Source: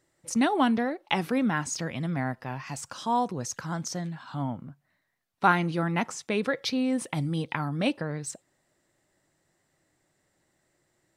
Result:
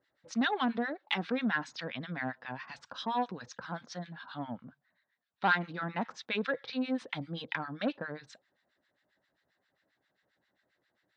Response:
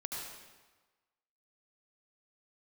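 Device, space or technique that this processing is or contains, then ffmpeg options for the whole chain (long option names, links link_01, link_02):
guitar amplifier with harmonic tremolo: -filter_complex "[0:a]acrossover=split=1100[link_01][link_02];[link_01]aeval=exprs='val(0)*(1-1/2+1/2*cos(2*PI*7.5*n/s))':channel_layout=same[link_03];[link_02]aeval=exprs='val(0)*(1-1/2-1/2*cos(2*PI*7.5*n/s))':channel_layout=same[link_04];[link_03][link_04]amix=inputs=2:normalize=0,asoftclip=type=tanh:threshold=-20.5dB,highpass=90,equalizer=frequency=100:width_type=q:width=4:gain=-10,equalizer=frequency=150:width_type=q:width=4:gain=-10,equalizer=frequency=350:width_type=q:width=4:gain=-7,equalizer=frequency=1600:width_type=q:width=4:gain=7,equalizer=frequency=3700:width_type=q:width=4:gain=7,lowpass=frequency=4600:width=0.5412,lowpass=frequency=4600:width=1.3066"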